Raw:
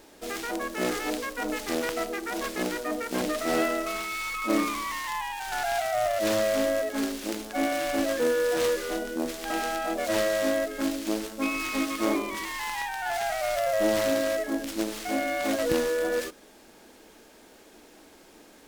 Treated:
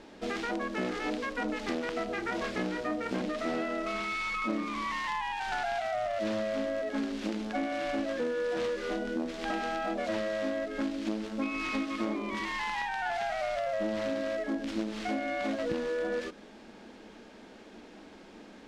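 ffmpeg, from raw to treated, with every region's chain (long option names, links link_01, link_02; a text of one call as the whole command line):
ffmpeg -i in.wav -filter_complex "[0:a]asettb=1/sr,asplit=3[link_01][link_02][link_03];[link_01]atrim=end=2.064[link_04];[link_02]atrim=start=2.06:end=3.2,asetpts=PTS-STARTPTS,afade=type=in:duration=0.004:curve=qsin,afade=type=out:start_time=1.136:duration=0.004:curve=qsin,aeval=exprs='val(0)+0.00282*(sin(2*PI*60*n/s)+sin(2*PI*2*60*n/s)/2+sin(2*PI*3*60*n/s)/3+sin(2*PI*4*60*n/s)/4+sin(2*PI*5*60*n/s)/5)':channel_layout=same,asplit=2[link_05][link_06];[link_06]adelay=26,volume=-6.5dB[link_07];[link_05][link_07]amix=inputs=2:normalize=0,atrim=end_sample=50274[link_08];[link_03]atrim=start=3.196[link_09];[link_04][link_08]acrossfade=duration=0.004:curve1=hsin:curve2=qsin[link_10];[link_10][link_09]acrossfade=duration=0.004:curve1=qsin:curve2=hsin,lowpass=4100,equalizer=frequency=210:width_type=o:width=0.44:gain=9,acompressor=threshold=-31dB:ratio=6,volume=1.5dB" out.wav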